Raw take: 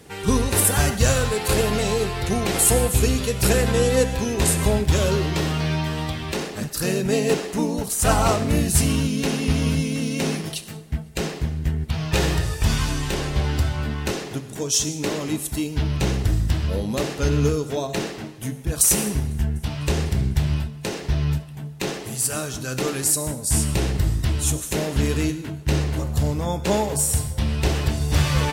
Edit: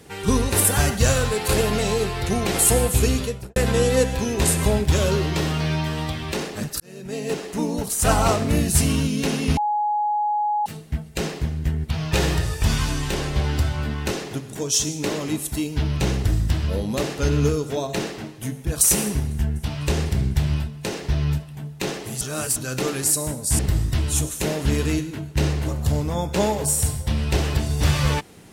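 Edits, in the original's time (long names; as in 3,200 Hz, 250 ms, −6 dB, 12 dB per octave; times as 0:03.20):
0:03.15–0:03.56: fade out and dull
0:06.80–0:07.79: fade in linear
0:09.57–0:10.66: beep over 837 Hz −19 dBFS
0:22.21–0:22.56: reverse
0:23.59–0:23.90: remove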